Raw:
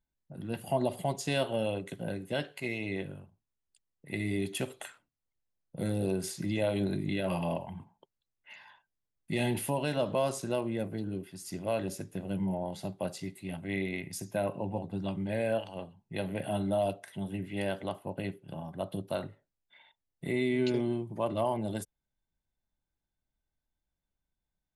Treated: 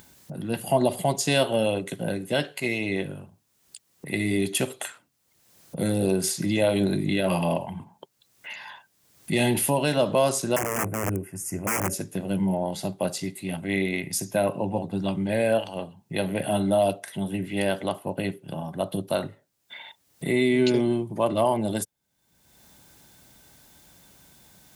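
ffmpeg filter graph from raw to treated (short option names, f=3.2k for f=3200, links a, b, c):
-filter_complex "[0:a]asettb=1/sr,asplit=3[a][b][c];[a]atrim=end=10.564[d];[b]atrim=start=10.56:end=11.93,asetpts=PTS-STARTPTS,afade=t=in:d=0.004:c=qsin,afade=t=out:st=1.366:d=0.004:c=qsin,lowshelf=f=140:t=q:w=1.5:g=6.5,aeval=exprs='(mod(25.1*val(0)+1,2)-1)/25.1':c=same,asuperstop=centerf=3900:order=4:qfactor=0.94[e];[c]atrim=start=11.926[f];[d][e]acrossfade=d=0.004:c1=hsin:c2=qsin[g];[g][f]acrossfade=d=0.004:c1=qsin:c2=hsin,highpass=110,bass=f=250:g=0,treble=f=4k:g=5,acompressor=mode=upward:threshold=-40dB:ratio=2.5,volume=8dB"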